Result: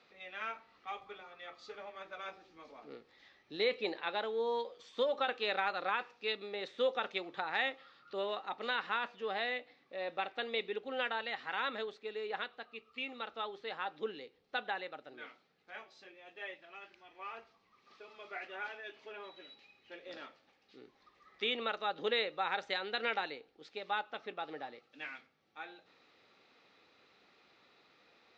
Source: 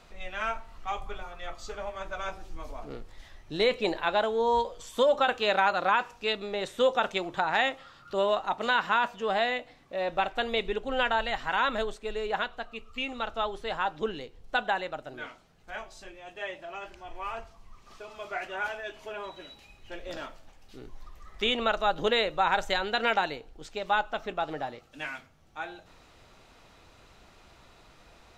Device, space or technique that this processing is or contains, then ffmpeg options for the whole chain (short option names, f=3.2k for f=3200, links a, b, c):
phone earpiece: -filter_complex "[0:a]highpass=330,equalizer=f=350:t=q:w=4:g=-3,equalizer=f=650:t=q:w=4:g=-10,equalizer=f=980:t=q:w=4:g=-9,equalizer=f=1.5k:t=q:w=4:g=-5,equalizer=f=3k:t=q:w=4:g=-5,lowpass=f=4.5k:w=0.5412,lowpass=f=4.5k:w=1.3066,asettb=1/sr,asplit=3[a][b][c];[a]atrim=end=16.544[d];[b]atrim=start=16.54:end=17.19,asetpts=PTS-STARTPTS,afade=t=in:d=0.004:c=qsin,afade=t=out:st=0.646:d=0.004:c=qsin,equalizer=f=530:t=o:w=1.9:g=-5.5[e];[c]atrim=start=17.186[f];[d][e]acrossfade=d=0.004:c1=hsin:c2=qsin[g];[g][f]acrossfade=d=0.004:c1=qsin:c2=hsin,volume=-4dB"